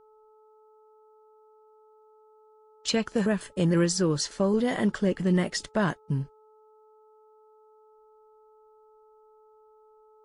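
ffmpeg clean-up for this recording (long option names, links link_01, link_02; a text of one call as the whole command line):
ffmpeg -i in.wav -af "bandreject=frequency=432.4:width_type=h:width=4,bandreject=frequency=864.8:width_type=h:width=4,bandreject=frequency=1297.2:width_type=h:width=4" out.wav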